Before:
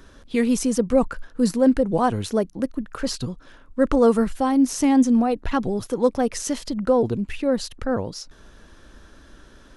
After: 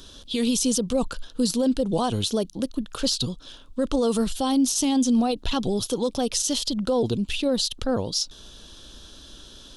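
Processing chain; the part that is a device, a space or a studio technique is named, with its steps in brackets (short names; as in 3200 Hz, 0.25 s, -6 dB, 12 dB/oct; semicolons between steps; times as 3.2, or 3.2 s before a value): over-bright horn tweeter (resonant high shelf 2600 Hz +9 dB, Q 3; limiter -14.5 dBFS, peak gain reduction 10 dB)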